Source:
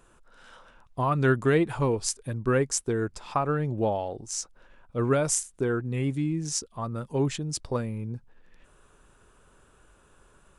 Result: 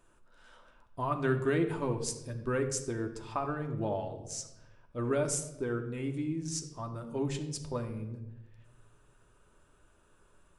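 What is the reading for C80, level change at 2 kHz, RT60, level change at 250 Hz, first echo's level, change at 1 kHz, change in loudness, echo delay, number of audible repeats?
12.0 dB, −7.0 dB, 1.0 s, −5.5 dB, no echo audible, −7.0 dB, −6.5 dB, no echo audible, no echo audible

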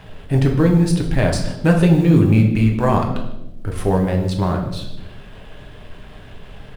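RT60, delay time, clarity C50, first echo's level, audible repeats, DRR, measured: 0.95 s, 154 ms, 6.5 dB, −18.0 dB, 1, 1.0 dB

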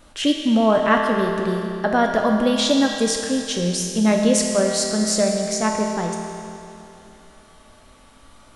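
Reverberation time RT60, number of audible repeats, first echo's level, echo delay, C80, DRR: 2.8 s, no echo audible, no echo audible, no echo audible, 3.0 dB, 0.5 dB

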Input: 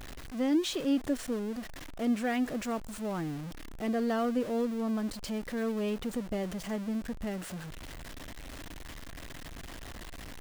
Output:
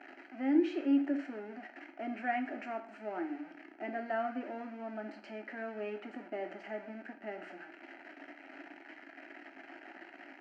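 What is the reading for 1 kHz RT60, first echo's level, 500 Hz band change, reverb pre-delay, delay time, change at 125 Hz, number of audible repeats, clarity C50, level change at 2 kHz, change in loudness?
0.50 s, no echo audible, −5.0 dB, 5 ms, no echo audible, below −15 dB, no echo audible, 10.5 dB, −0.5 dB, −4.5 dB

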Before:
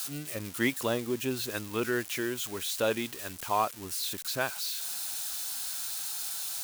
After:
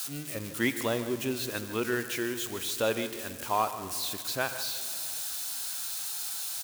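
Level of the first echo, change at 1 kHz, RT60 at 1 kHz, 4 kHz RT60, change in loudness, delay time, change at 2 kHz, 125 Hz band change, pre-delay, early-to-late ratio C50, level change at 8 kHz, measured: −13.5 dB, +0.5 dB, 2.2 s, 1.6 s, +0.5 dB, 153 ms, +0.5 dB, +0.5 dB, 36 ms, 10.0 dB, +0.5 dB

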